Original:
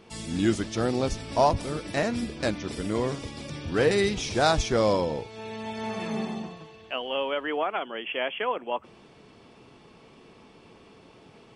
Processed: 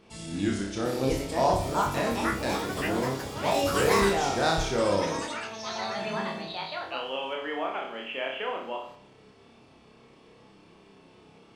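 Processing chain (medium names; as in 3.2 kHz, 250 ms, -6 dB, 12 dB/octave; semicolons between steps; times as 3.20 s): flutter echo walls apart 5.2 m, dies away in 0.59 s; ever faster or slower copies 778 ms, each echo +6 st, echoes 3; trim -5.5 dB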